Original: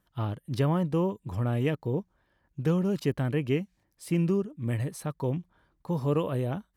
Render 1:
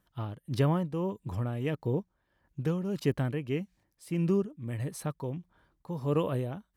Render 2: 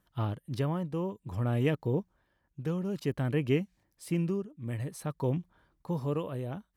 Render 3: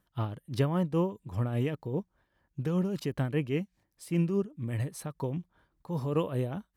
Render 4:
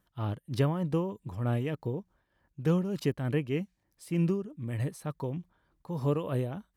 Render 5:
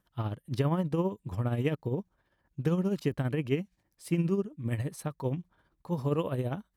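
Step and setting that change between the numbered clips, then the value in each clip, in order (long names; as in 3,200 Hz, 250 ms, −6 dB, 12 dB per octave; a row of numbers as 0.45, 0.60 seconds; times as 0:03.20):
amplitude tremolo, speed: 1.6, 0.55, 5, 3.3, 15 Hertz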